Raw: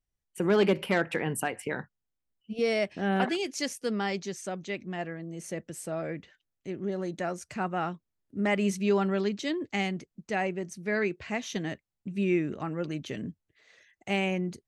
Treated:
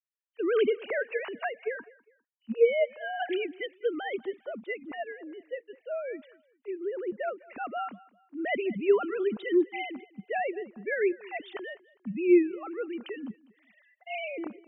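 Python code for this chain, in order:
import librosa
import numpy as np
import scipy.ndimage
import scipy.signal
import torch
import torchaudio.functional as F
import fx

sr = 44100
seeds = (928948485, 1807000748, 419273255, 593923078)

y = fx.sine_speech(x, sr)
y = fx.echo_feedback(y, sr, ms=202, feedback_pct=31, wet_db=-22.0)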